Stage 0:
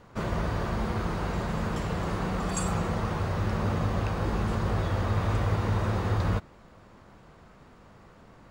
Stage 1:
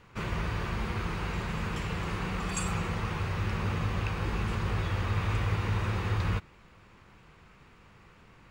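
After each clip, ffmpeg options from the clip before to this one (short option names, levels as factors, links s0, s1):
-af "equalizer=f=250:t=o:w=0.67:g=-5,equalizer=f=630:t=o:w=0.67:g=-8,equalizer=f=2500:t=o:w=0.67:g=8,volume=0.794"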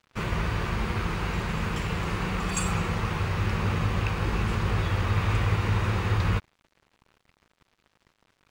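-af "aeval=exprs='sgn(val(0))*max(abs(val(0))-0.00282,0)':c=same,volume=1.78"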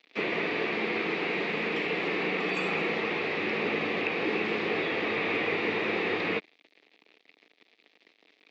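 -filter_complex "[0:a]aexciter=amount=2.4:drive=9.9:freq=2000,highpass=f=230:w=0.5412,highpass=f=230:w=1.3066,equalizer=f=300:t=q:w=4:g=7,equalizer=f=440:t=q:w=4:g=8,equalizer=f=690:t=q:w=4:g=4,equalizer=f=1000:t=q:w=4:g=-5,equalizer=f=1500:t=q:w=4:g=-5,equalizer=f=3000:t=q:w=4:g=-7,lowpass=f=3400:w=0.5412,lowpass=f=3400:w=1.3066,acrossover=split=2600[s0][s1];[s1]acompressor=threshold=0.00794:ratio=4:attack=1:release=60[s2];[s0][s2]amix=inputs=2:normalize=0"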